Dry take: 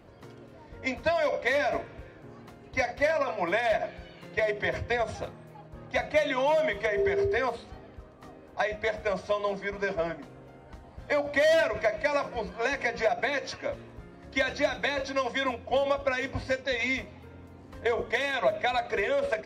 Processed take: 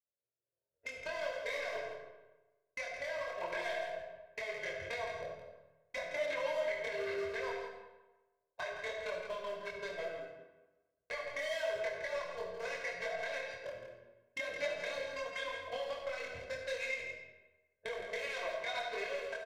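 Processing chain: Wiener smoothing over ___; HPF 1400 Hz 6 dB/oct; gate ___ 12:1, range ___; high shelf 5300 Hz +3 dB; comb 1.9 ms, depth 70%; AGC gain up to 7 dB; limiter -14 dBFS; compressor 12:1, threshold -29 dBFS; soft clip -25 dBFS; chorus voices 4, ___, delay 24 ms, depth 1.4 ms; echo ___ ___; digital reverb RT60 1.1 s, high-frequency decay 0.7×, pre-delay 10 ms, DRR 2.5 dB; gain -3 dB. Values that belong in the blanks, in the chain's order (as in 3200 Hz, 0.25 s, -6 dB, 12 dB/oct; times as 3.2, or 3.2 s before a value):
41 samples, -55 dBFS, -35 dB, 1.8 Hz, 0.166 s, -8.5 dB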